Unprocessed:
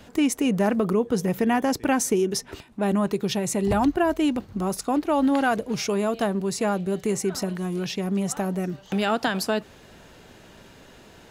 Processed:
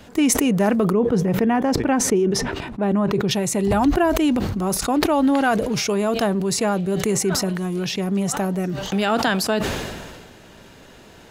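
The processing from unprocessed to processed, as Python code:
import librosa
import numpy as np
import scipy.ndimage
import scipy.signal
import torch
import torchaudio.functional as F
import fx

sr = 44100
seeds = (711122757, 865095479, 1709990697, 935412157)

y = fx.lowpass(x, sr, hz=1600.0, slope=6, at=(0.92, 3.31))
y = fx.sustainer(y, sr, db_per_s=34.0)
y = F.gain(torch.from_numpy(y), 3.0).numpy()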